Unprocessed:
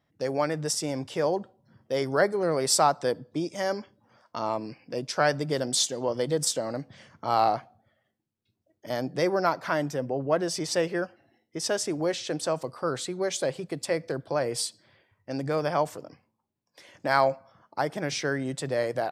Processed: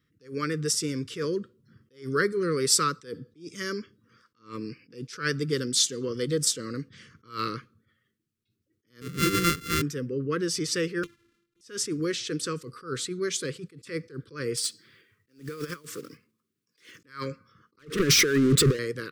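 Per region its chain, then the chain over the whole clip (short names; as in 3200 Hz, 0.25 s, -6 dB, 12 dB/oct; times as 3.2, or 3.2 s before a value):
9.01–9.82 sample sorter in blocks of 64 samples + low shelf 190 Hz +10 dB
11.03–11.61 sample sorter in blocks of 128 samples + envelope flanger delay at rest 8 ms, full sweep at -35 dBFS + high shelf 8400 Hz -9.5 dB
14.57–17.06 block floating point 5-bit + Bessel high-pass 170 Hz + negative-ratio compressor -31 dBFS, ratio -0.5
17.79–18.79 formant sharpening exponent 1.5 + negative-ratio compressor -34 dBFS, ratio -0.5 + sample leveller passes 5
whole clip: Chebyshev band-stop 460–1200 Hz, order 3; attack slew limiter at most 190 dB/s; gain +2.5 dB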